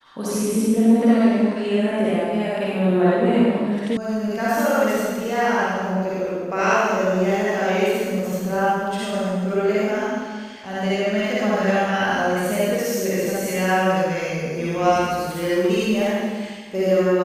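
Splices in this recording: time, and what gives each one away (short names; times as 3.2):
3.97 sound cut off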